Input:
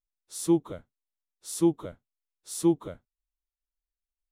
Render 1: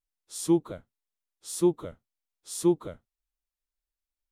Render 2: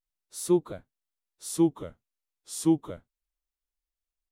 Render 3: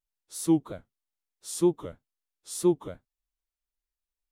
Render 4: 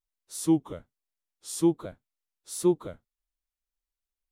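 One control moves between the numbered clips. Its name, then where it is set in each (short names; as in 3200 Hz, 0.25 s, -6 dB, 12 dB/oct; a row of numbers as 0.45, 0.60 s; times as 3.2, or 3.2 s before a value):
vibrato, rate: 1.9, 0.33, 3.1, 1.2 Hz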